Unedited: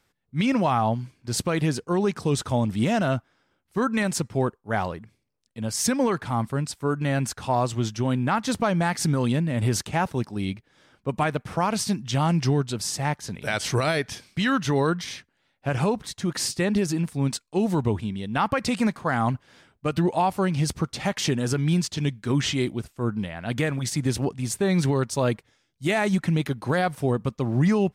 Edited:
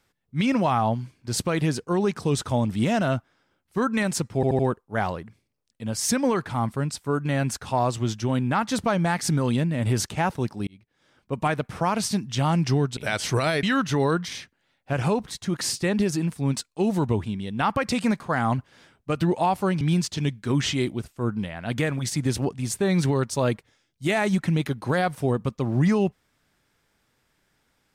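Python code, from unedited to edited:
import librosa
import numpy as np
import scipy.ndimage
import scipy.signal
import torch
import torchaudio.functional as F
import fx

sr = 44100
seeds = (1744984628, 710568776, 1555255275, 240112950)

y = fx.edit(x, sr, fx.stutter(start_s=4.35, slice_s=0.08, count=4),
    fx.fade_in_span(start_s=10.43, length_s=0.78),
    fx.cut(start_s=12.73, length_s=0.65),
    fx.cut(start_s=14.04, length_s=0.35),
    fx.cut(start_s=20.57, length_s=1.04), tone=tone)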